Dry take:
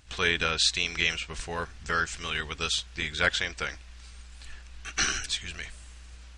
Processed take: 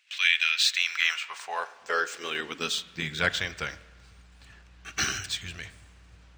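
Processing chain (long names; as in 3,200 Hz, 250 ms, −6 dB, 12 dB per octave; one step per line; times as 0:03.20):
running median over 3 samples
high-pass filter sweep 2,400 Hz → 100 Hz, 0:00.49–0:03.40
spring reverb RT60 1.3 s, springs 31/38 ms, chirp 40 ms, DRR 15.5 dB
one half of a high-frequency compander decoder only
level −1 dB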